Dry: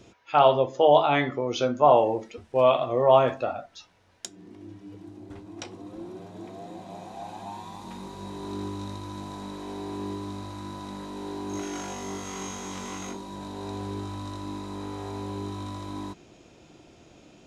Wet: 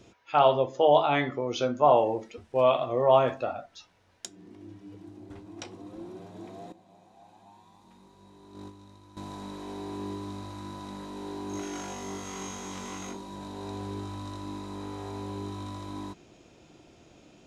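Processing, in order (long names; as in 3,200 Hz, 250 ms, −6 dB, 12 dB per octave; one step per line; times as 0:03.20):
0:06.72–0:09.17: noise gate −31 dBFS, range −14 dB
level −2.5 dB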